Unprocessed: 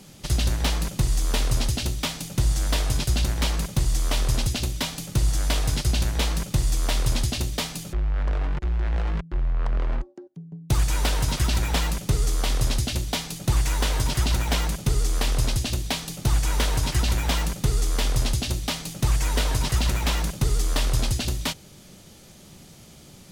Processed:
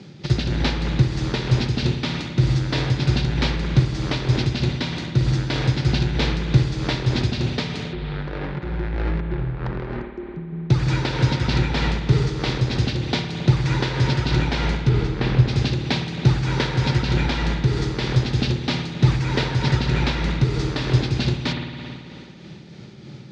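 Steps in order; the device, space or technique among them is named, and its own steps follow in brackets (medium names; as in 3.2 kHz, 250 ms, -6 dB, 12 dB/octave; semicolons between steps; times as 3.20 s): 14.89–15.48 s: tone controls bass +5 dB, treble -10 dB; combo amplifier with spring reverb and tremolo (spring tank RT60 2.8 s, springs 54 ms, chirp 30 ms, DRR 3 dB; tremolo 3.2 Hz, depth 36%; cabinet simulation 110–4500 Hz, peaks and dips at 130 Hz +9 dB, 350 Hz +6 dB, 670 Hz -7 dB, 1.1 kHz -6 dB, 3 kHz -6 dB); trim +6 dB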